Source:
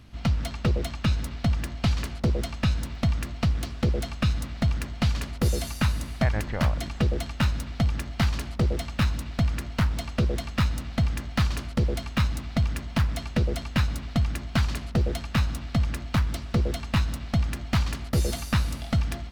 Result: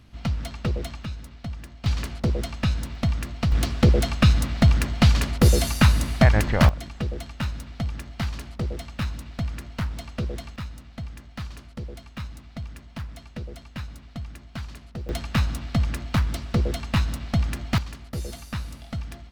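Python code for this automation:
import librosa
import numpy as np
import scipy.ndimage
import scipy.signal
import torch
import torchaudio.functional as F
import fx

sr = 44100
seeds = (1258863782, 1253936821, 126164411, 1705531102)

y = fx.gain(x, sr, db=fx.steps((0.0, -2.0), (1.04, -9.5), (1.86, 0.5), (3.52, 7.5), (6.69, -4.5), (10.56, -11.0), (15.09, 1.5), (17.78, -7.5)))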